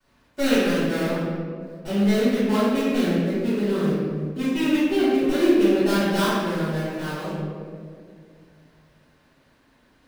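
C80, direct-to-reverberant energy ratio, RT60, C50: -0.5 dB, -17.5 dB, 2.2 s, -3.5 dB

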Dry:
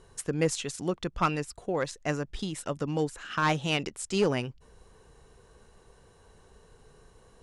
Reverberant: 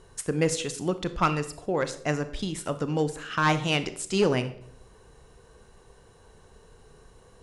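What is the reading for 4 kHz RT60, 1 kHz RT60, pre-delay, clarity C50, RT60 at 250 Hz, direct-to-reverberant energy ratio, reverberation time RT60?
0.55 s, 0.60 s, 32 ms, 13.5 dB, 0.85 s, 11.0 dB, 0.65 s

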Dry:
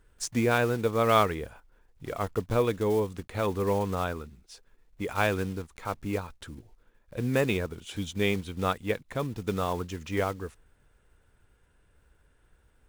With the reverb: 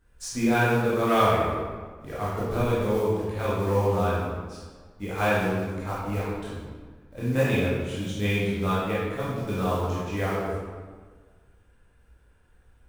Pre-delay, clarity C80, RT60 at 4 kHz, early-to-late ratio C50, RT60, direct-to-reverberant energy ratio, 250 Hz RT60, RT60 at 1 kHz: 15 ms, 1.0 dB, 1.0 s, -2.5 dB, 1.5 s, -9.5 dB, 1.7 s, 1.5 s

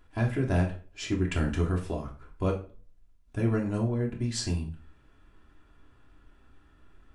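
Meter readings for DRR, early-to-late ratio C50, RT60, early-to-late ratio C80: -1.0 dB, 10.5 dB, 0.40 s, 16.0 dB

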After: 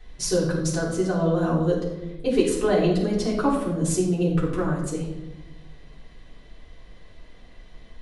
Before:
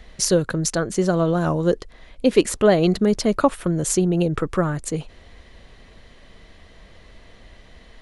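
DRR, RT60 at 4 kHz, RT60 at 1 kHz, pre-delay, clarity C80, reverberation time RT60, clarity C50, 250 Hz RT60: -7.5 dB, 0.70 s, 0.85 s, 3 ms, 7.0 dB, 1.0 s, 4.0 dB, 1.8 s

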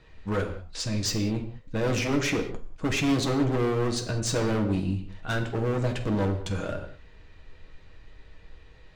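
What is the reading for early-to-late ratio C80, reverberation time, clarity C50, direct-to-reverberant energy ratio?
11.5 dB, no single decay rate, 9.0 dB, 2.5 dB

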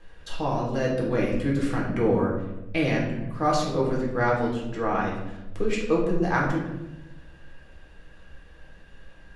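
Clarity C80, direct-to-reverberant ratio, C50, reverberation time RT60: 6.0 dB, -4.0 dB, 3.5 dB, 1.0 s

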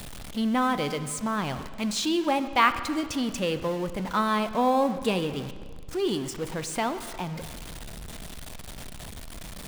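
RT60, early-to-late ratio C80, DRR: 1.8 s, 13.0 dB, 10.5 dB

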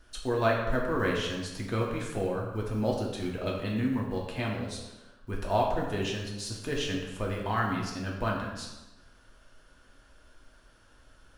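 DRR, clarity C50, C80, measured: -2.5 dB, 3.0 dB, 5.5 dB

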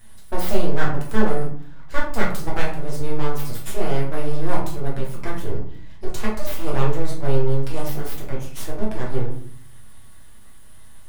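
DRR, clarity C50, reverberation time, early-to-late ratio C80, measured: -4.5 dB, 5.0 dB, 0.55 s, 9.5 dB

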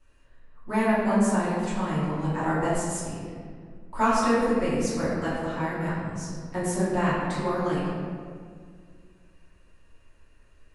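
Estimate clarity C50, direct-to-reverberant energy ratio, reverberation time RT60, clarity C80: -1.5 dB, -12.0 dB, 2.0 s, 0.5 dB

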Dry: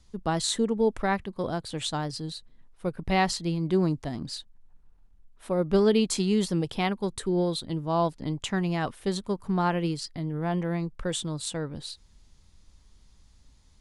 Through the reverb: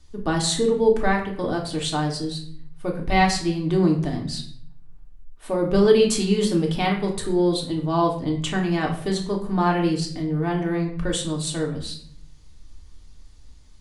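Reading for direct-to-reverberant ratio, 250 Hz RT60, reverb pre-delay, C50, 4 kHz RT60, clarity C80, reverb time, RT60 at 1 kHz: -0.5 dB, 0.95 s, 3 ms, 8.0 dB, 0.50 s, 11.5 dB, 0.60 s, 0.55 s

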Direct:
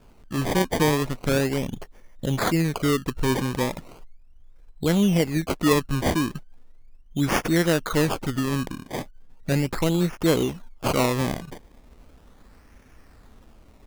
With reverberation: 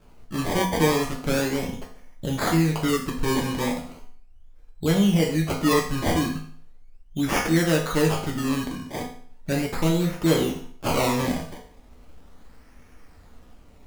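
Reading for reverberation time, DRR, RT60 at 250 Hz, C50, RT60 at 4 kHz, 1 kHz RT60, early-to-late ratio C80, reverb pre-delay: 0.50 s, -1.5 dB, 0.55 s, 7.0 dB, 0.50 s, 0.50 s, 10.5 dB, 4 ms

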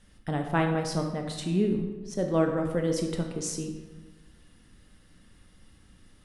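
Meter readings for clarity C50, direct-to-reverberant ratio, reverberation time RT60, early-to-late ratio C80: 5.5 dB, 3.0 dB, 1.2 s, 7.5 dB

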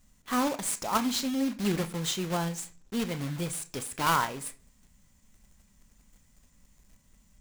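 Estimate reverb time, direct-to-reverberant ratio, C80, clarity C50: 0.45 s, 10.0 dB, 22.5 dB, 18.5 dB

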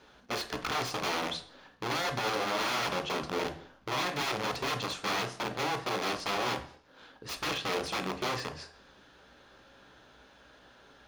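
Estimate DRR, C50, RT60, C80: 6.0 dB, 12.0 dB, 0.55 s, 16.5 dB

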